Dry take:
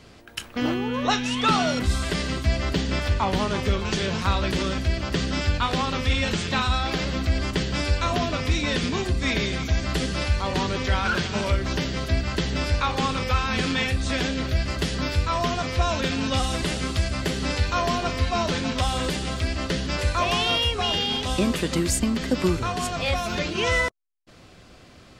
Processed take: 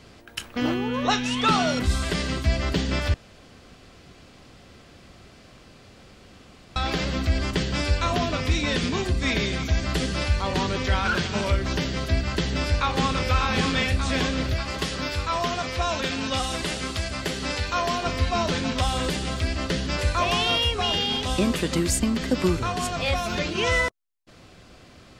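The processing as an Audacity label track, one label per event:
3.140000	6.760000	room tone
12.340000	13.250000	echo throw 0.59 s, feedback 65%, level -5.5 dB
14.540000	18.060000	low shelf 270 Hz -7 dB

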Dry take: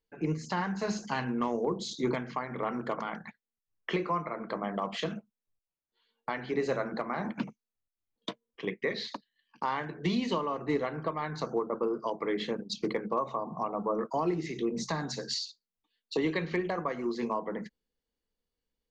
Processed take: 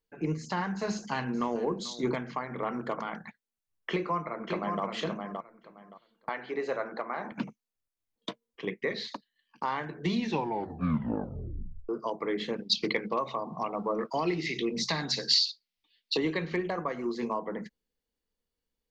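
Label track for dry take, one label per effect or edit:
0.890000	1.650000	echo throw 0.44 s, feedback 15%, level -16.5 dB
3.900000	4.830000	echo throw 0.57 s, feedback 20%, level -4.5 dB
6.290000	7.320000	tone controls bass -15 dB, treble -8 dB
10.130000	10.130000	tape stop 1.76 s
12.530000	16.180000	band shelf 3200 Hz +11 dB

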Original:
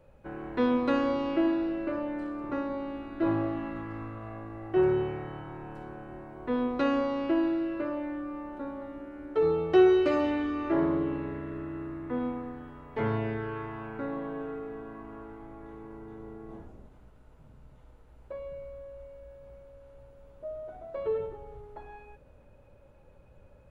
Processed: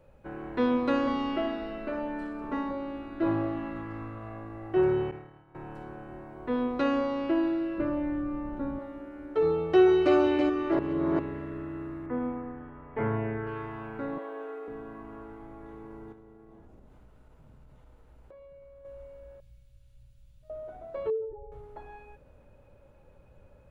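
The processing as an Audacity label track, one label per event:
1.070000	2.710000	comb 4.6 ms, depth 75%
5.110000	5.550000	expander -31 dBFS
7.780000	8.790000	tone controls bass +13 dB, treble -4 dB
9.540000	10.160000	echo throw 0.33 s, feedback 35%, level -4 dB
10.790000	11.190000	reverse
12.060000	13.470000	LPF 2400 Hz 24 dB/oct
14.180000	14.680000	HPF 360 Hz 24 dB/oct
16.120000	18.850000	compressor, threshold -49 dBFS
19.400000	20.500000	EQ curve 130 Hz 0 dB, 360 Hz -28 dB, 1100 Hz -22 dB, 3700 Hz +2 dB
21.100000	21.520000	spectral contrast raised exponent 2

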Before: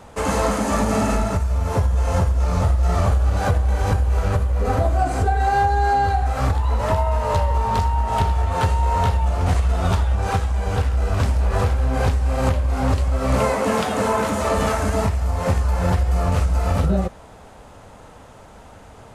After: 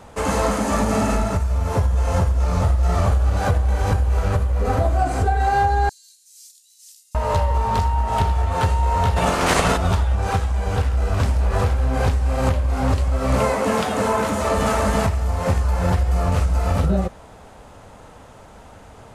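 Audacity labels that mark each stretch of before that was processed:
5.890000	7.150000	inverse Chebyshev high-pass stop band from 970 Hz, stop band 80 dB
9.160000	9.760000	spectral limiter ceiling under each frame's peak by 27 dB
14.320000	14.730000	echo throw 0.33 s, feedback 15%, level -3 dB

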